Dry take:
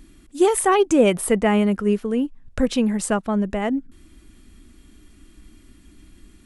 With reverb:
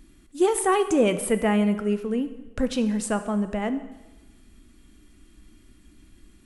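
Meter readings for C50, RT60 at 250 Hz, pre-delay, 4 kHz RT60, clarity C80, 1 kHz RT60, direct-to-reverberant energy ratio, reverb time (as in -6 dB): 12.0 dB, 1.1 s, 5 ms, 1.0 s, 14.0 dB, 1.1 s, 9.5 dB, 1.1 s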